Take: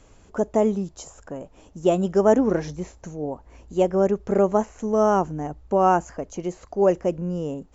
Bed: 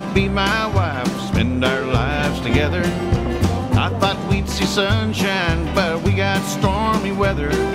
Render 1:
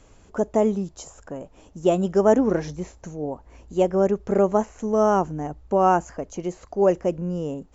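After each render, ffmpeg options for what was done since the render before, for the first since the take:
-af anull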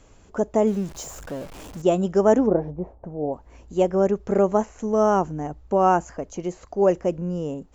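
-filter_complex "[0:a]asettb=1/sr,asplit=3[a][b][c];[a]atrim=end=0.674[d];[b]atrim=start=0.67:end=1.82,asetpts=PTS-STARTPTS,afade=t=in:d=0.004:c=qsin,afade=t=out:st=1.146:d=0.004:c=qsin,aeval=exprs='val(0)+0.5*0.015*sgn(val(0))':c=same[e];[c]atrim=start=1.816[f];[d][e]acrossfade=d=0.004:c1=hsin:c2=qsin[g];[g][f]acrossfade=d=0.004:c1=qsin:c2=hsin,asplit=3[h][i][j];[h]afade=t=out:st=2.46:d=0.02[k];[i]lowpass=f=740:t=q:w=1.8,afade=t=in:st=2.46:d=0.02,afade=t=out:st=3.32:d=0.02[l];[j]afade=t=in:st=3.32:d=0.02[m];[k][l][m]amix=inputs=3:normalize=0"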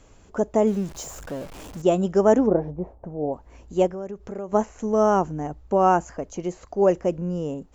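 -filter_complex "[0:a]asettb=1/sr,asplit=3[a][b][c];[a]atrim=end=3.874[d];[b]atrim=start=3.87:end=4.53,asetpts=PTS-STARTPTS,afade=t=in:d=0.004:c=qsin,afade=t=out:st=0.656:d=0.004:c=qsin,acompressor=threshold=-36dB:ratio=2.5:attack=3.2:release=140:knee=1:detection=peak[e];[c]atrim=start=4.526[f];[d][e]acrossfade=d=0.004:c1=hsin:c2=qsin[g];[g][f]acrossfade=d=0.004:c1=qsin:c2=hsin"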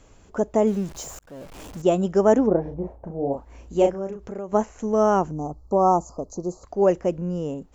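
-filter_complex "[0:a]asettb=1/sr,asplit=3[a][b][c];[a]atrim=end=2.624[d];[b]atrim=start=2.62:end=4.26,asetpts=PTS-STARTPTS,afade=t=in:d=0.004:c=qsin,afade=t=out:st=1.636:d=0.004:c=qsin,asplit=2[e][f];[f]adelay=36,volume=-4dB[g];[e][g]amix=inputs=2:normalize=0,atrim=end_sample=72324[h];[c]atrim=start=4.256[i];[d][h]acrossfade=d=0.004:c1=hsin:c2=qsin[j];[j][i]acrossfade=d=0.004:c1=qsin:c2=hsin,asettb=1/sr,asplit=3[k][l][m];[k]atrim=end=5.314[n];[l]atrim=start=5.31:end=6.64,asetpts=PTS-STARTPTS,afade=t=in:d=0.004:c=qsin,afade=t=out:st=1.326:d=0.004:c=qsin,asuperstop=centerf=2300:order=20:qfactor=0.82[o];[m]atrim=start=6.636[p];[n][o]acrossfade=d=0.004:c1=hsin:c2=qsin[q];[q][p]acrossfade=d=0.004:c1=qsin:c2=hsin,asplit=2[r][s];[r]atrim=end=1.19,asetpts=PTS-STARTPTS,afade=t=out:st=1.186:d=0.004:c=hsin[t];[s]atrim=start=1.19,asetpts=PTS-STARTPTS,afade=t=in:d=0.42[u];[t][u]concat=n=2:v=0:a=1"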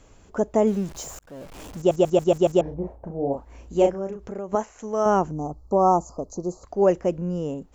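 -filter_complex "[0:a]asettb=1/sr,asplit=3[a][b][c];[a]atrim=end=4.554[d];[b]atrim=start=4.55:end=5.06,asetpts=PTS-STARTPTS,afade=t=in:d=0.004:c=qsin,afade=t=out:st=0.506:d=0.004:c=qsin,lowshelf=f=400:g=-11[e];[c]atrim=start=5.056[f];[d][e]acrossfade=d=0.004:c1=hsin:c2=qsin[g];[g][f]acrossfade=d=0.004:c1=qsin:c2=hsin,asplit=7[h][i][j][k][l][m][n];[h]atrim=end=1.912[o];[i]atrim=start=1.768:end=1.912[p];[j]atrim=start=1.768:end=1.912[q];[k]atrim=start=1.768:end=1.912[r];[l]atrim=start=1.768:end=1.912[s];[m]atrim=start=1.768:end=1.912[t];[n]atrim=start=2.608[u];[o][p]acrossfade=d=0.004:c1=hsin:c2=hsin[v];[v][q]acrossfade=d=0.004:c1=hsin:c2=hsin[w];[w][r]acrossfade=d=0.004:c1=hsin:c2=hsin[x];[x][s]acrossfade=d=0.004:c1=hsin:c2=hsin[y];[y][t]acrossfade=d=0.004:c1=hsin:c2=hsin[z];[z][u]acrossfade=d=0.004:c1=hsin:c2=hsin"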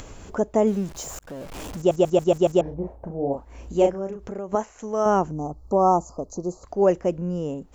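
-af "acompressor=mode=upward:threshold=-30dB:ratio=2.5"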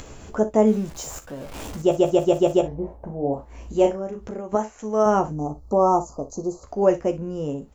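-filter_complex "[0:a]asplit=2[a][b];[b]adelay=14,volume=-7.5dB[c];[a][c]amix=inputs=2:normalize=0,aecho=1:1:37|60:0.178|0.168"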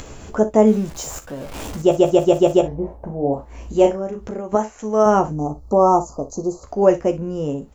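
-af "volume=4dB"

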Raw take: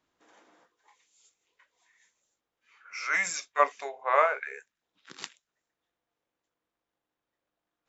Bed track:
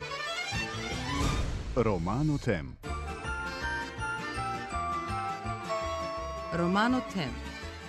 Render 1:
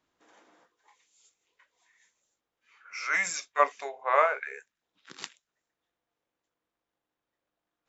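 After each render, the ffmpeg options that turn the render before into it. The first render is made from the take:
-af anull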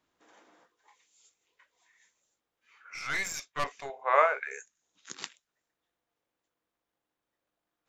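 -filter_complex "[0:a]asettb=1/sr,asplit=3[a][b][c];[a]atrim=end=2.944[d];[b]atrim=start=2.94:end=3.9,asetpts=PTS-STARTPTS,afade=t=in:d=0.004:c=qsin,afade=t=out:st=0.956:d=0.004:c=qsin,aeval=exprs='(tanh(20*val(0)+0.6)-tanh(0.6))/20':c=same[e];[c]atrim=start=3.896[f];[d][e]acrossfade=d=0.004:c1=hsin:c2=qsin[g];[g][f]acrossfade=d=0.004:c1=qsin:c2=hsin,asettb=1/sr,asplit=3[h][i][j];[h]atrim=end=4.514[k];[i]atrim=start=4.51:end=5.14,asetpts=PTS-STARTPTS,afade=t=in:d=0.004:c=qsin,afade=t=out:st=0.626:d=0.004:c=qsin,lowpass=f=6.7k:t=q:w=10[l];[j]atrim=start=5.136[m];[k][l]acrossfade=d=0.004:c1=hsin:c2=qsin[n];[n][m]acrossfade=d=0.004:c1=qsin:c2=hsin"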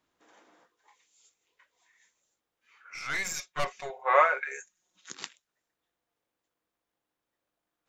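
-filter_complex "[0:a]asettb=1/sr,asplit=3[a][b][c];[a]atrim=end=3.244[d];[b]atrim=start=3.24:end=5.1,asetpts=PTS-STARTPTS,afade=t=in:d=0.004:c=qsin,afade=t=out:st=1.856:d=0.004:c=qsin,aecho=1:1:5.5:0.82,atrim=end_sample=82026[e];[c]atrim=start=5.096[f];[d][e]acrossfade=d=0.004:c1=hsin:c2=qsin[g];[g][f]acrossfade=d=0.004:c1=qsin:c2=hsin"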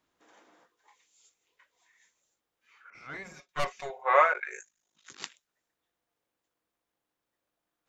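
-filter_complex "[0:a]asettb=1/sr,asplit=3[a][b][c];[a]atrim=end=2.904[d];[b]atrim=start=2.9:end=3.49,asetpts=PTS-STARTPTS,afade=t=in:d=0.004:c=qsin,afade=t=out:st=0.586:d=0.004:c=qsin,bandpass=f=300:t=q:w=0.52[e];[c]atrim=start=3.486[f];[d][e]acrossfade=d=0.004:c1=hsin:c2=qsin[g];[g][f]acrossfade=d=0.004:c1=qsin:c2=hsin,asplit=3[h][i][j];[h]afade=t=out:st=4.33:d=0.02[k];[i]aeval=exprs='val(0)*sin(2*PI*26*n/s)':c=same,afade=t=in:st=4.33:d=0.02,afade=t=out:st=5.19:d=0.02[l];[j]afade=t=in:st=5.19:d=0.02[m];[k][l][m]amix=inputs=3:normalize=0"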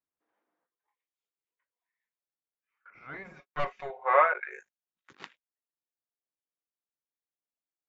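-af "lowpass=2.3k,agate=range=-21dB:threshold=-55dB:ratio=16:detection=peak"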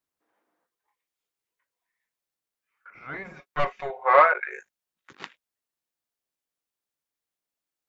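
-af "acontrast=53"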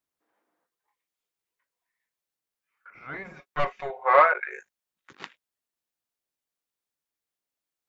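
-af "volume=-1dB"

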